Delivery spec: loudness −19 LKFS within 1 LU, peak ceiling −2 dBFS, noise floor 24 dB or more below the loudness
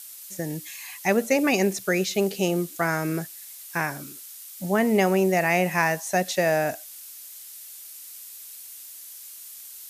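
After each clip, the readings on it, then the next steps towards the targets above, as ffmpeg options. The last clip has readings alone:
background noise floor −43 dBFS; target noise floor −48 dBFS; integrated loudness −24.0 LKFS; sample peak −7.5 dBFS; target loudness −19.0 LKFS
→ -af "afftdn=noise_reduction=6:noise_floor=-43"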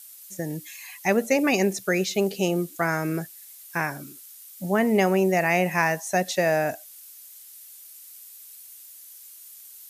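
background noise floor −46 dBFS; target noise floor −49 dBFS
→ -af "afftdn=noise_reduction=6:noise_floor=-46"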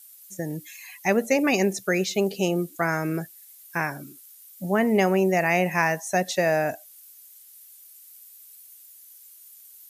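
background noise floor −50 dBFS; integrated loudness −24.0 LKFS; sample peak −7.5 dBFS; target loudness −19.0 LKFS
→ -af "volume=5dB"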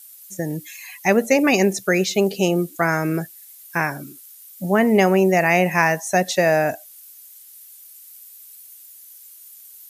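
integrated loudness −19.0 LKFS; sample peak −2.5 dBFS; background noise floor −45 dBFS

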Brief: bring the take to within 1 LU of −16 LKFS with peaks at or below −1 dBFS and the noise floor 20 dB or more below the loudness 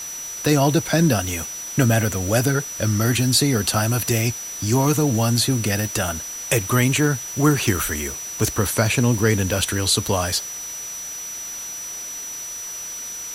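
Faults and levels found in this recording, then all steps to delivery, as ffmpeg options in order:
interfering tone 5,900 Hz; level of the tone −30 dBFS; background noise floor −32 dBFS; target noise floor −41 dBFS; integrated loudness −21.0 LKFS; sample peak −4.5 dBFS; target loudness −16.0 LKFS
→ -af "bandreject=frequency=5900:width=30"
-af "afftdn=noise_reduction=9:noise_floor=-32"
-af "volume=5dB,alimiter=limit=-1dB:level=0:latency=1"

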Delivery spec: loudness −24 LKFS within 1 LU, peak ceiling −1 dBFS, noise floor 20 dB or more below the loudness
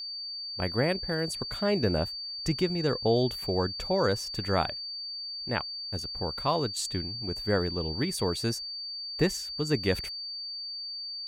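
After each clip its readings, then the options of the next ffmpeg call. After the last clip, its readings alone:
interfering tone 4,600 Hz; level of the tone −35 dBFS; integrated loudness −30.0 LKFS; sample peak −12.0 dBFS; target loudness −24.0 LKFS
→ -af "bandreject=frequency=4600:width=30"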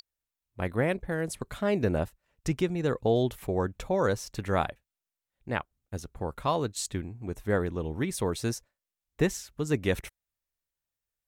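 interfering tone none found; integrated loudness −30.5 LKFS; sample peak −12.0 dBFS; target loudness −24.0 LKFS
→ -af "volume=6.5dB"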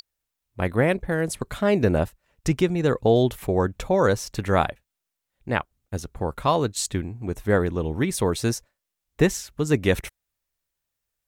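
integrated loudness −24.0 LKFS; sample peak −5.5 dBFS; background noise floor −83 dBFS

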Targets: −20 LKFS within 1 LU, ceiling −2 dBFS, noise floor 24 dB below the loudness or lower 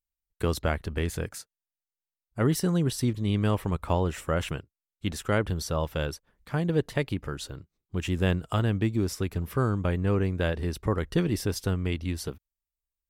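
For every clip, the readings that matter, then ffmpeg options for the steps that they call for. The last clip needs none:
integrated loudness −29.0 LKFS; sample peak −12.5 dBFS; target loudness −20.0 LKFS
→ -af "volume=9dB"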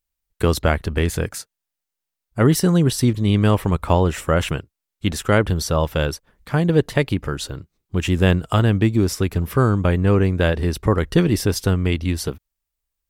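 integrated loudness −20.0 LKFS; sample peak −3.5 dBFS; background noise floor −83 dBFS

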